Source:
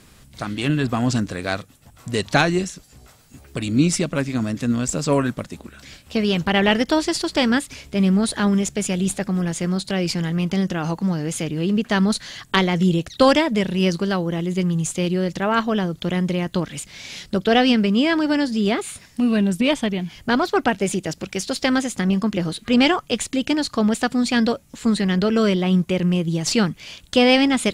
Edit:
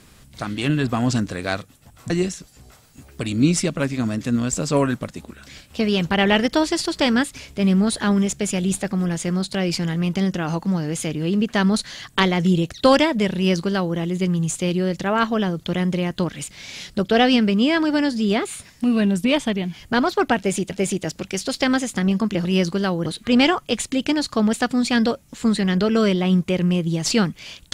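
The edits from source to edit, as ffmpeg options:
ffmpeg -i in.wav -filter_complex "[0:a]asplit=5[link_01][link_02][link_03][link_04][link_05];[link_01]atrim=end=2.102[link_06];[link_02]atrim=start=2.458:end=21.072[link_07];[link_03]atrim=start=20.728:end=22.472[link_08];[link_04]atrim=start=13.718:end=14.332[link_09];[link_05]atrim=start=22.468[link_10];[link_06][link_07]acrossfade=duration=0.004:curve1=hsin:curve2=hsin[link_11];[link_11][link_08]acrossfade=duration=0.004:curve1=hsin:curve2=hsin[link_12];[link_12][link_09]acrossfade=duration=0.004:curve1=hsin:curve2=hsin[link_13];[link_13][link_10]acrossfade=duration=0.004:curve1=hsin:curve2=hsin" out.wav

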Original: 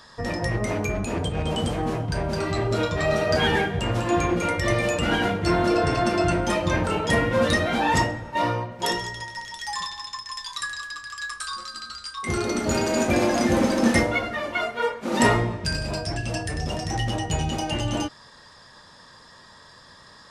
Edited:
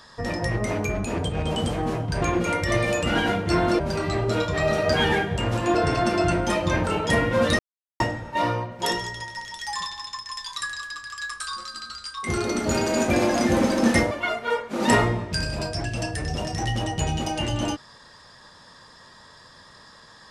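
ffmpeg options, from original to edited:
ffmpeg -i in.wav -filter_complex "[0:a]asplit=7[link_01][link_02][link_03][link_04][link_05][link_06][link_07];[link_01]atrim=end=2.222[link_08];[link_02]atrim=start=4.178:end=5.752[link_09];[link_03]atrim=start=2.218:end=4.182[link_10];[link_04]atrim=start=5.748:end=7.59,asetpts=PTS-STARTPTS,afade=type=out:start_time=1.838:duration=0.004:curve=hsin[link_11];[link_05]atrim=start=7.59:end=8,asetpts=PTS-STARTPTS,volume=0[link_12];[link_06]atrim=start=8:end=14.112,asetpts=PTS-STARTPTS,afade=type=in:duration=0.004:curve=hsin[link_13];[link_07]atrim=start=14.428[link_14];[link_08][link_09]acrossfade=duration=0.004:curve1=hsin:curve2=hsin[link_15];[link_15][link_10]acrossfade=duration=0.004:curve1=hsin:curve2=hsin[link_16];[link_11][link_12][link_13]concat=n=3:v=0:a=1[link_17];[link_16][link_17]acrossfade=duration=0.004:curve1=hsin:curve2=hsin[link_18];[link_18][link_14]acrossfade=duration=0.004:curve1=hsin:curve2=hsin" out.wav

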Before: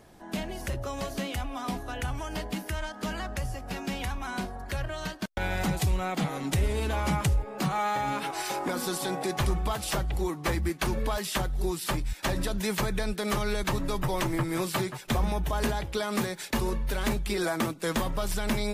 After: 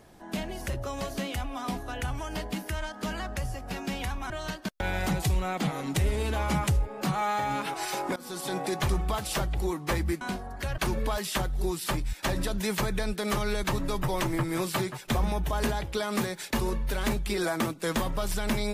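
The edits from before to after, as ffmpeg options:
ffmpeg -i in.wav -filter_complex "[0:a]asplit=5[link_01][link_02][link_03][link_04][link_05];[link_01]atrim=end=4.302[link_06];[link_02]atrim=start=4.868:end=8.73,asetpts=PTS-STARTPTS,afade=type=out:start_time=3.858:duration=0.004:curve=hsin:silence=0.105925[link_07];[link_03]atrim=start=8.73:end=10.782,asetpts=PTS-STARTPTS,afade=type=in:duration=0.4:silence=0.105925[link_08];[link_04]atrim=start=4.298:end=4.872[link_09];[link_05]atrim=start=10.778[link_10];[link_07][link_08]concat=n=2:v=0:a=1[link_11];[link_06][link_11]acrossfade=duration=0.004:curve1=hsin:curve2=hsin[link_12];[link_12][link_09]acrossfade=duration=0.004:curve1=hsin:curve2=hsin[link_13];[link_13][link_10]acrossfade=duration=0.004:curve1=hsin:curve2=hsin" out.wav

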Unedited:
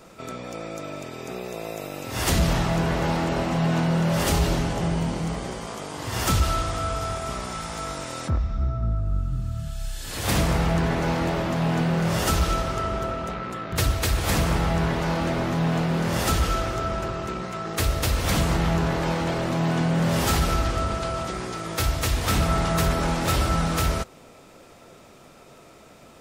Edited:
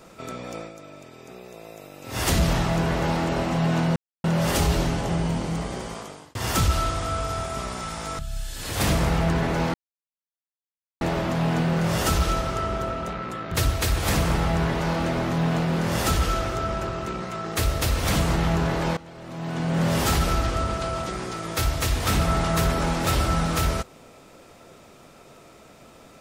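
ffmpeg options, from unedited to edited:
ffmpeg -i in.wav -filter_complex "[0:a]asplit=8[link_01][link_02][link_03][link_04][link_05][link_06][link_07][link_08];[link_01]atrim=end=0.73,asetpts=PTS-STARTPTS,afade=type=out:start_time=0.58:duration=0.15:silence=0.354813[link_09];[link_02]atrim=start=0.73:end=2.01,asetpts=PTS-STARTPTS,volume=-9dB[link_10];[link_03]atrim=start=2.01:end=3.96,asetpts=PTS-STARTPTS,afade=type=in:duration=0.15:silence=0.354813,afade=type=out:start_time=1.946:duration=0.004:curve=hsin,apad=pad_dur=0.28[link_11];[link_04]atrim=start=3.96:end=6.07,asetpts=PTS-STARTPTS,afade=type=in:duration=0.004:curve=hsin,afade=type=out:start_time=1.67:duration=0.44[link_12];[link_05]atrim=start=6.07:end=7.912,asetpts=PTS-STARTPTS,afade=type=in:duration=0.004:curve=hsin[link_13];[link_06]atrim=start=9.668:end=11.22,asetpts=PTS-STARTPTS,afade=type=out:start_time=1.548:duration=0.004:curve=hsin,apad=pad_dur=1.27[link_14];[link_07]atrim=start=11.22:end=19.18,asetpts=PTS-STARTPTS,afade=type=in:duration=0.004:curve=hsin,afade=type=out:start_time=7.956:duration=0.004:curve=hsin:silence=0.112202[link_15];[link_08]atrim=start=19.18,asetpts=PTS-STARTPTS,afade=type=in:duration=0.84:curve=qua:silence=0.112202[link_16];[link_09][link_10][link_11][link_12][link_13]concat=n=5:v=0:a=1[link_17];[link_14][link_15][link_16]concat=n=3:v=0:a=1[link_18];[link_17][link_18]acrossfade=duration=0.004:curve1=hsin:curve2=hsin" out.wav

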